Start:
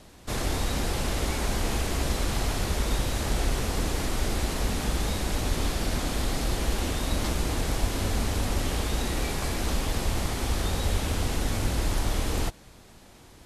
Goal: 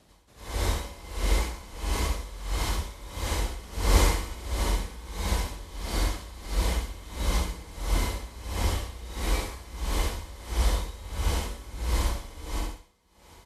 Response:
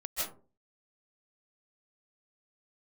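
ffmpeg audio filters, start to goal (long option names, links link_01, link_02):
-filter_complex "[0:a]highpass=46,asettb=1/sr,asplit=3[link_01][link_02][link_03];[link_01]atrim=end=3.634[link_04];[link_02]atrim=start=3.63:end=4.25,asetpts=PTS-STARTPTS,afade=type=in:duration=0.004:curve=qsin,afade=type=out:start_time=0.616:duration=0.004:curve=qsin,acontrast=74[link_05];[link_03]atrim=start=4.246[link_06];[link_04][link_05]acrossfade=duration=0.004:curve1=hsin:curve2=qsin[link_07];[link_07][link_06]acrossfade=duration=0.004:curve1=qsin:curve2=hsin,aecho=1:1:67|134|201|268|335|402:0.562|0.276|0.135|0.0662|0.0324|0.0159[link_08];[1:a]atrim=start_sample=2205,asetrate=70560,aresample=44100[link_09];[link_08][link_09]afir=irnorm=-1:irlink=0,aeval=exprs='val(0)*pow(10,-18*(0.5-0.5*cos(2*PI*1.5*n/s))/20)':channel_layout=same"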